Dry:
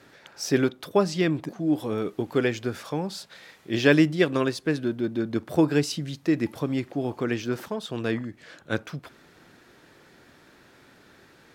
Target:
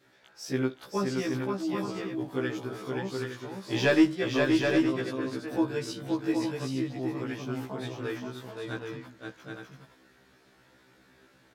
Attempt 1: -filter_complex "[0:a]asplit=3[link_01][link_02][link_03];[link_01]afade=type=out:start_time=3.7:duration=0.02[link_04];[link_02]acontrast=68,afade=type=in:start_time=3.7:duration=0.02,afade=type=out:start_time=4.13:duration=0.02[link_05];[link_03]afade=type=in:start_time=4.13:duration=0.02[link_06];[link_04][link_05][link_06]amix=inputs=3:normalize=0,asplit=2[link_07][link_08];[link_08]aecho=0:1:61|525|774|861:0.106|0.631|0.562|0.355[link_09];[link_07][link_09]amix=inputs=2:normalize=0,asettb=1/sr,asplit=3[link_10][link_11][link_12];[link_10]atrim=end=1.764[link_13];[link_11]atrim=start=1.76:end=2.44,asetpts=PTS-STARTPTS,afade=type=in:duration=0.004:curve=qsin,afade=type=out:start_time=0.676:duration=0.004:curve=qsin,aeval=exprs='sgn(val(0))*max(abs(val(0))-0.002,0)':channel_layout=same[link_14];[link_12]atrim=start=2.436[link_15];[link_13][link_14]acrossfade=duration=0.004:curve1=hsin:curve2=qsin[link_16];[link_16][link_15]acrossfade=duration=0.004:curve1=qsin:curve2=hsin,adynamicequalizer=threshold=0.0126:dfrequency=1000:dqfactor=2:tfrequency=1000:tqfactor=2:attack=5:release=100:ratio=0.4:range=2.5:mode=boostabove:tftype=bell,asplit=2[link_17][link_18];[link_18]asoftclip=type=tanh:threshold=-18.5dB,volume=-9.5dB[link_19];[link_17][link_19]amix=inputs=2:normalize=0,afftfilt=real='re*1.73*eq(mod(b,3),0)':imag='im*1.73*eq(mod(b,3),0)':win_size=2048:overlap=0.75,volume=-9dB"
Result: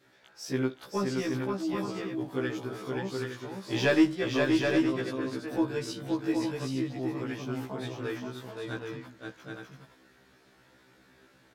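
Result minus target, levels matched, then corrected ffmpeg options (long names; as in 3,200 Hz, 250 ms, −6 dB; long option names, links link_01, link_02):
soft clipping: distortion +12 dB
-filter_complex "[0:a]asplit=3[link_01][link_02][link_03];[link_01]afade=type=out:start_time=3.7:duration=0.02[link_04];[link_02]acontrast=68,afade=type=in:start_time=3.7:duration=0.02,afade=type=out:start_time=4.13:duration=0.02[link_05];[link_03]afade=type=in:start_time=4.13:duration=0.02[link_06];[link_04][link_05][link_06]amix=inputs=3:normalize=0,asplit=2[link_07][link_08];[link_08]aecho=0:1:61|525|774|861:0.106|0.631|0.562|0.355[link_09];[link_07][link_09]amix=inputs=2:normalize=0,asettb=1/sr,asplit=3[link_10][link_11][link_12];[link_10]atrim=end=1.764[link_13];[link_11]atrim=start=1.76:end=2.44,asetpts=PTS-STARTPTS,afade=type=in:duration=0.004:curve=qsin,afade=type=out:start_time=0.676:duration=0.004:curve=qsin,aeval=exprs='sgn(val(0))*max(abs(val(0))-0.002,0)':channel_layout=same[link_14];[link_12]atrim=start=2.436[link_15];[link_13][link_14]acrossfade=duration=0.004:curve1=hsin:curve2=qsin[link_16];[link_16][link_15]acrossfade=duration=0.004:curve1=qsin:curve2=hsin,adynamicequalizer=threshold=0.0126:dfrequency=1000:dqfactor=2:tfrequency=1000:tqfactor=2:attack=5:release=100:ratio=0.4:range=2.5:mode=boostabove:tftype=bell,asplit=2[link_17][link_18];[link_18]asoftclip=type=tanh:threshold=-6.5dB,volume=-9.5dB[link_19];[link_17][link_19]amix=inputs=2:normalize=0,afftfilt=real='re*1.73*eq(mod(b,3),0)':imag='im*1.73*eq(mod(b,3),0)':win_size=2048:overlap=0.75,volume=-9dB"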